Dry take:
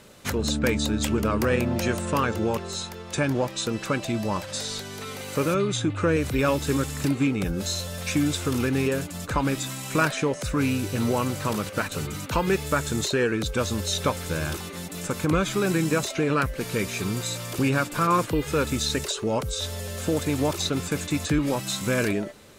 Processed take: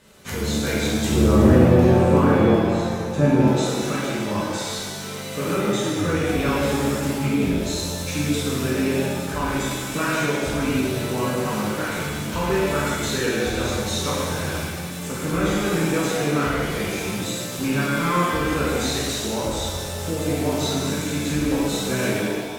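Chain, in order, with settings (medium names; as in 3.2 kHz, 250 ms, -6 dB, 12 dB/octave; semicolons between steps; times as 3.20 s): 1.10–3.39 s: tilt shelf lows +9.5 dB, about 1.2 kHz; pitch-shifted reverb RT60 1.7 s, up +7 st, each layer -8 dB, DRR -8 dB; trim -7 dB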